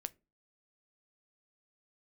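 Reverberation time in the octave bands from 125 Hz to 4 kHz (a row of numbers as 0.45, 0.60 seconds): 0.40, 0.40, 0.35, 0.25, 0.20, 0.15 seconds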